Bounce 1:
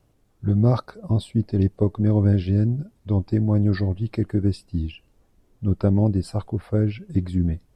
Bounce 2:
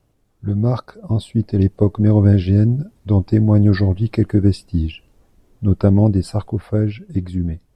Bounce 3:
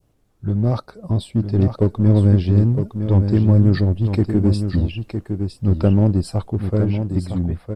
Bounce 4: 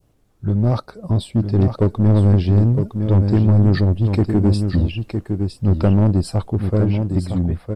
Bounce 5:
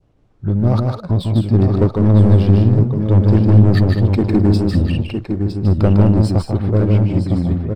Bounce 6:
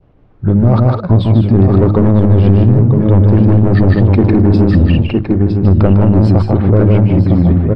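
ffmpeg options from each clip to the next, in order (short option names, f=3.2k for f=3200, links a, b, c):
-af "dynaudnorm=f=300:g=9:m=11.5dB"
-filter_complex "[0:a]adynamicequalizer=threshold=0.0158:dfrequency=1500:dqfactor=0.72:tfrequency=1500:tqfactor=0.72:attack=5:release=100:ratio=0.375:range=3:mode=cutabove:tftype=bell,asplit=2[a][b];[b]volume=18.5dB,asoftclip=hard,volume=-18.5dB,volume=-7dB[c];[a][c]amix=inputs=2:normalize=0,aecho=1:1:960:0.422,volume=-3dB"
-af "asoftclip=type=tanh:threshold=-9.5dB,volume=2.5dB"
-filter_complex "[0:a]adynamicsmooth=sensitivity=7.5:basefreq=4.5k,asplit=2[a][b];[b]aecho=0:1:151.6|207:0.631|0.282[c];[a][c]amix=inputs=2:normalize=0,volume=1.5dB"
-af "lowpass=2.6k,bandreject=f=51.89:t=h:w=4,bandreject=f=103.78:t=h:w=4,bandreject=f=155.67:t=h:w=4,bandreject=f=207.56:t=h:w=4,bandreject=f=259.45:t=h:w=4,bandreject=f=311.34:t=h:w=4,bandreject=f=363.23:t=h:w=4,alimiter=level_in=10.5dB:limit=-1dB:release=50:level=0:latency=1,volume=-1dB"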